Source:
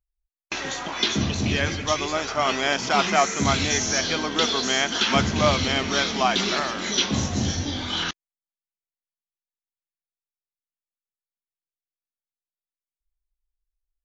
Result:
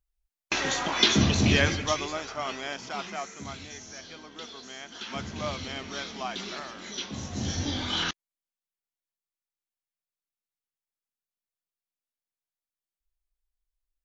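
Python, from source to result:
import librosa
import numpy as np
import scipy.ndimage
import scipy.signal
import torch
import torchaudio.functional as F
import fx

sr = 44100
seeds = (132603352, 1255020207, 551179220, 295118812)

y = fx.gain(x, sr, db=fx.line((1.57, 2.0), (2.21, -8.5), (3.74, -20.0), (4.8, -20.0), (5.34, -13.0), (7.17, -13.0), (7.65, -2.0)))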